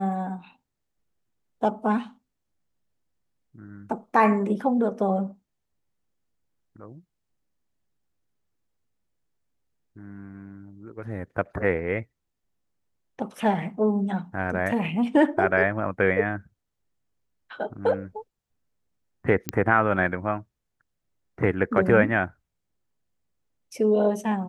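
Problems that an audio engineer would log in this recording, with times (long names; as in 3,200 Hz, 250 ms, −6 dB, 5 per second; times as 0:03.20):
0:19.49: click −9 dBFS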